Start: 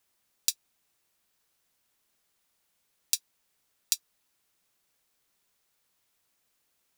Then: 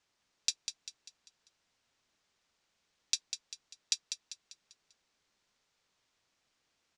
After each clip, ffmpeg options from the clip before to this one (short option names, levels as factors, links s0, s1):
-filter_complex "[0:a]asoftclip=type=tanh:threshold=0.473,lowpass=f=6600:w=0.5412,lowpass=f=6600:w=1.3066,asplit=2[s0][s1];[s1]aecho=0:1:197|394|591|788|985:0.398|0.171|0.0736|0.0317|0.0136[s2];[s0][s2]amix=inputs=2:normalize=0"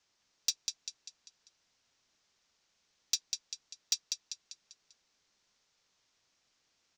-filter_complex "[0:a]lowpass=f=6200:t=q:w=1.9,acrossover=split=210[s0][s1];[s1]asoftclip=type=tanh:threshold=0.112[s2];[s0][s2]amix=inputs=2:normalize=0"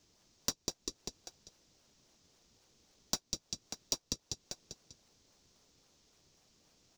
-filter_complex "[0:a]asplit=2[s0][s1];[s1]acrusher=samples=33:mix=1:aa=0.000001:lfo=1:lforange=52.8:lforate=3.7,volume=0.562[s2];[s0][s2]amix=inputs=2:normalize=0,acompressor=threshold=0.00708:ratio=2.5,equalizer=f=1700:w=0.62:g=-8.5,volume=2.66"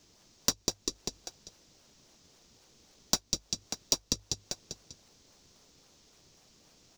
-af "bandreject=f=50:t=h:w=6,bandreject=f=100:t=h:w=6,volume=2.24"